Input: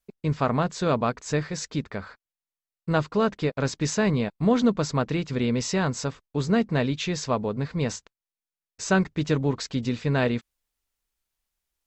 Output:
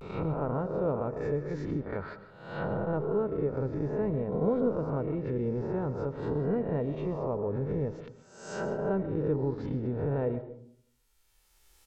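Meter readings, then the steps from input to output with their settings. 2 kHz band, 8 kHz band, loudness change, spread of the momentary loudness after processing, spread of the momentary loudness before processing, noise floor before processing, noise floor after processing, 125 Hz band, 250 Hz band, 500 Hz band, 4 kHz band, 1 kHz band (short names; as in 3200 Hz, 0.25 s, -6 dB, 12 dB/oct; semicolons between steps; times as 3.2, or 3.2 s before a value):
-13.5 dB, under -20 dB, -6.0 dB, 9 LU, 7 LU, under -85 dBFS, -67 dBFS, -5.5 dB, -7.0 dB, -2.5 dB, under -20 dB, -8.5 dB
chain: spectral swells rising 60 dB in 0.94 s; recorder AGC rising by 16 dB/s; treble ducked by the level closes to 670 Hz, closed at -20 dBFS; comb 2.2 ms, depth 37%; vibrato 0.49 Hz 53 cents; digital reverb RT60 0.62 s, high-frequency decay 0.35×, pre-delay 90 ms, DRR 11.5 dB; gain -7 dB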